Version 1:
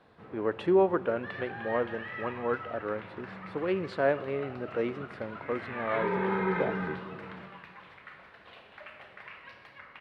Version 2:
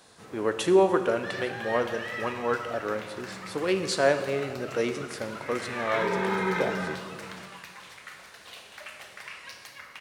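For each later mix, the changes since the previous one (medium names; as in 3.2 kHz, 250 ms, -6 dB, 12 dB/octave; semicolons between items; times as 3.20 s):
speech: send +11.0 dB; master: remove distance through air 470 m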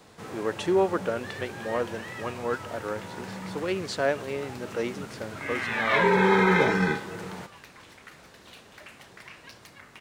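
speech: add distance through air 57 m; first sound +10.0 dB; reverb: off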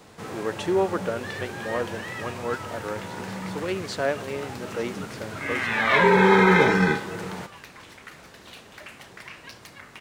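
first sound +4.0 dB; second sound +4.5 dB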